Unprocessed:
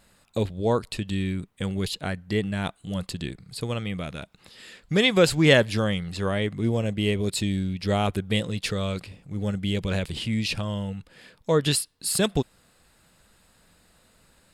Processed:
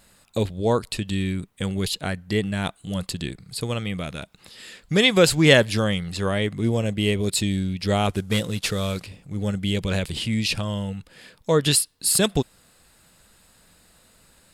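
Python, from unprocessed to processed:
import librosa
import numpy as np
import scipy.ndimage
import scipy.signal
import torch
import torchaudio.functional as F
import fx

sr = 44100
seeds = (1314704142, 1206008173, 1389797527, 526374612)

y = fx.cvsd(x, sr, bps=64000, at=(8.09, 9.06))
y = fx.high_shelf(y, sr, hz=4700.0, db=5.5)
y = F.gain(torch.from_numpy(y), 2.0).numpy()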